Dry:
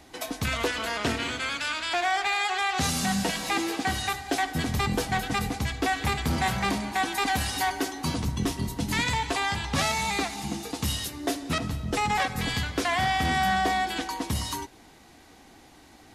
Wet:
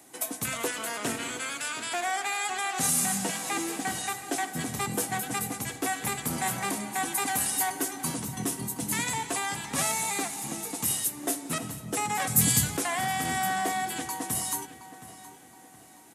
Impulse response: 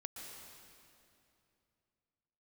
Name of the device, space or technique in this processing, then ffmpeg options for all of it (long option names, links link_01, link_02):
budget condenser microphone: -filter_complex "[0:a]highpass=frequency=120:width=0.5412,highpass=frequency=120:width=1.3066,highshelf=frequency=6400:width_type=q:width=1.5:gain=11.5,asettb=1/sr,asplit=3[link_01][link_02][link_03];[link_01]atrim=end=3.184[link_04];[link_02]atrim=start=3.18:end=4.81,asetpts=PTS-STARTPTS,afade=type=in:duration=0.004:curve=qsin,afade=type=out:start_time=1.626:duration=0.004:curve=qsin,acrossover=split=8300[link_05][link_06];[link_06]acompressor=threshold=-37dB:ratio=4:attack=1:release=60[link_07];[link_05][link_07]amix=inputs=2:normalize=0[link_08];[link_03]atrim=start=4.806[link_09];[link_04][link_08]acrossfade=duration=0.004:curve1=hsin:curve2=qsin[link_10];[link_10][link_09]acrossfade=duration=0.004:curve1=qsin:curve2=hsin,bandreject=frequency=50:width_type=h:width=6,bandreject=frequency=100:width_type=h:width=6,bandreject=frequency=150:width_type=h:width=6,bandreject=frequency=200:width_type=h:width=6,asettb=1/sr,asplit=3[link_11][link_12][link_13];[link_11]atrim=end=12.274[link_14];[link_12]atrim=start=12.27:end=12.77,asetpts=PTS-STARTPTS,afade=type=in:duration=0.004:curve=qsin,afade=type=out:start_time=0.496:duration=0.004:curve=qsin,bass=frequency=250:gain=14,treble=frequency=4000:gain=13[link_15];[link_13]atrim=start=12.766[link_16];[link_14][link_15]acrossfade=duration=0.004:curve1=hsin:curve2=qsin[link_17];[link_17][link_16]acrossfade=duration=0.004:curve1=qsin:curve2=hsin,asplit=2[link_18][link_19];[link_19]adelay=720,lowpass=frequency=4400:poles=1,volume=-14dB,asplit=2[link_20][link_21];[link_21]adelay=720,lowpass=frequency=4400:poles=1,volume=0.41,asplit=2[link_22][link_23];[link_23]adelay=720,lowpass=frequency=4400:poles=1,volume=0.41,asplit=2[link_24][link_25];[link_25]adelay=720,lowpass=frequency=4400:poles=1,volume=0.41[link_26];[link_18][link_20][link_22][link_24][link_26]amix=inputs=5:normalize=0,volume=-4dB"